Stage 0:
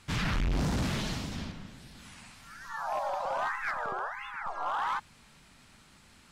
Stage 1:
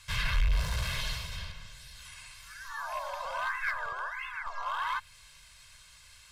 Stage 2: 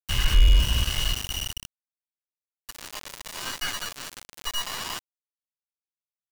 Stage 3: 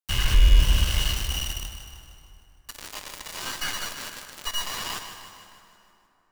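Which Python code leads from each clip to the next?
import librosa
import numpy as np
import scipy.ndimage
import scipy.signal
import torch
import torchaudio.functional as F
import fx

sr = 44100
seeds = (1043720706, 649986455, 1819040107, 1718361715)

y1 = fx.tone_stack(x, sr, knobs='10-0-10')
y1 = y1 + 0.74 * np.pad(y1, (int(1.9 * sr / 1000.0), 0))[:len(y1)]
y1 = fx.dynamic_eq(y1, sr, hz=6600.0, q=1.1, threshold_db=-58.0, ratio=4.0, max_db=-8)
y1 = F.gain(torch.from_numpy(y1), 5.5).numpy()
y2 = fx.low_shelf(y1, sr, hz=120.0, db=11.5)
y2 = y2 + 10.0 ** (-29.0 / 20.0) * np.sin(2.0 * np.pi * 2900.0 * np.arange(len(y2)) / sr)
y2 = np.where(np.abs(y2) >= 10.0 ** (-24.0 / 20.0), y2, 0.0)
y3 = fx.echo_feedback(y2, sr, ms=154, feedback_pct=57, wet_db=-10.5)
y3 = fx.rev_plate(y3, sr, seeds[0], rt60_s=3.2, hf_ratio=0.6, predelay_ms=0, drr_db=8.5)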